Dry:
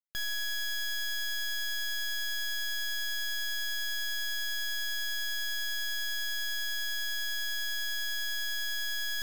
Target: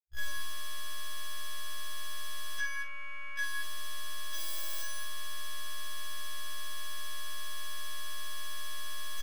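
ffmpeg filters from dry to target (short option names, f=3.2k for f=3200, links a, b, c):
-filter_complex "[0:a]asettb=1/sr,asplit=3[a][b][c];[a]atrim=end=2.604[d];[b]atrim=start=2.6:end=3.39,asetpts=PTS-STARTPTS,afade=t=in:d=0.004:c=qsin,afade=t=out:st=0.786:d=0.004:c=qsin,lowpass=f=1.6k:w=0.5412,lowpass=f=1.6k:w=1.3066[e];[c]atrim=start=3.386[f];[d][e]acrossfade=d=0.004:c1=hsin:c2=qsin[g];[g][f]acrossfade=d=0.004:c1=qsin:c2=hsin,afwtdn=0.0112,asettb=1/sr,asplit=3[h][i][j];[h]atrim=end=4.344[k];[i]atrim=start=4.34:end=4.82,asetpts=PTS-STARTPTS,afade=t=in:d=0.004:c=qsin,afade=t=out:st=0.476:d=0.004:c=qsin,aemphasis=mode=production:type=50fm[l];[j]atrim=start=4.816[m];[k][l]acrossfade=d=0.004:c1=hsin:c2=qsin[n];[n][m]acrossfade=d=0.004:c1=qsin:c2=hsin,asoftclip=type=tanh:threshold=-37.5dB,aeval=exprs='0.0133*(cos(1*acos(clip(val(0)/0.0133,-1,1)))-cos(1*PI/2))+0.000211*(cos(6*acos(clip(val(0)/0.0133,-1,1)))-cos(6*PI/2))':c=same,asplit=2[o][p];[p]adelay=40,volume=-10dB[q];[o][q]amix=inputs=2:normalize=0,aecho=1:1:47|95|161|226:0.631|0.158|0.282|0.398,afftfilt=real='re*1.73*eq(mod(b,3),0)':imag='im*1.73*eq(mod(b,3),0)':win_size=2048:overlap=0.75,volume=7dB"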